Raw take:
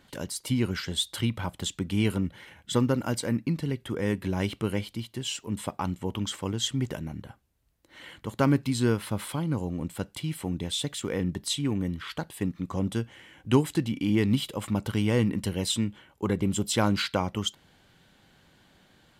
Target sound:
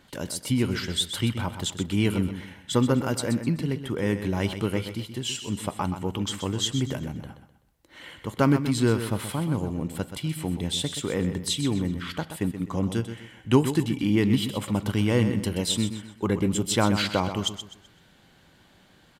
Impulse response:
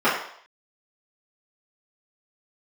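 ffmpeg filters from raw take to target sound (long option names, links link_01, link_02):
-filter_complex "[0:a]aecho=1:1:127|254|381|508:0.316|0.108|0.0366|0.0124,asplit=2[link_01][link_02];[1:a]atrim=start_sample=2205[link_03];[link_02][link_03]afir=irnorm=-1:irlink=0,volume=-39.5dB[link_04];[link_01][link_04]amix=inputs=2:normalize=0,volume=2dB"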